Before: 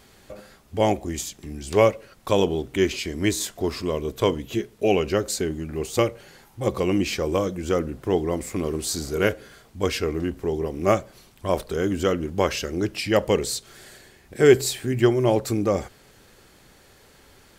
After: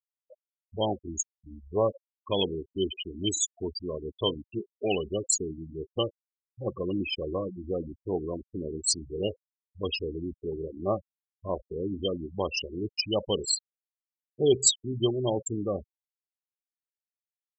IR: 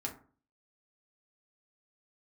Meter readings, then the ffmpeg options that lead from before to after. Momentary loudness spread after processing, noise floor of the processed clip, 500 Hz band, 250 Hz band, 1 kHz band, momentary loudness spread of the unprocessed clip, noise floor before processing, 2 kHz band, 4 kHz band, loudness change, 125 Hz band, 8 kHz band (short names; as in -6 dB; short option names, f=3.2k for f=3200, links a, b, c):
9 LU, under -85 dBFS, -8.0 dB, -8.0 dB, -9.5 dB, 9 LU, -54 dBFS, -12.5 dB, 0.0 dB, -6.5 dB, -8.5 dB, +2.0 dB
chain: -af "asuperstop=centerf=1700:order=12:qfactor=1.4,afftfilt=real='re*gte(hypot(re,im),0.112)':imag='im*gte(hypot(re,im),0.112)':win_size=1024:overlap=0.75,aexciter=amount=8.8:drive=1.8:freq=2.6k,volume=-8dB"